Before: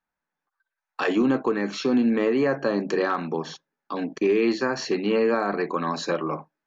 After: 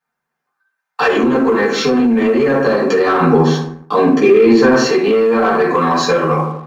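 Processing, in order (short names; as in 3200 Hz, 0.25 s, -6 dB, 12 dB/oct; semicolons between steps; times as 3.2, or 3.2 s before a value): reverb RT60 0.75 s, pre-delay 3 ms, DRR -9 dB; limiter -5 dBFS, peak gain reduction 7.5 dB; low shelf 170 Hz -12 dB; sample leveller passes 1; compressor, threshold -13 dBFS, peak gain reduction 4.5 dB; 3.21–4.87 low shelf 500 Hz +7 dB; gain +3 dB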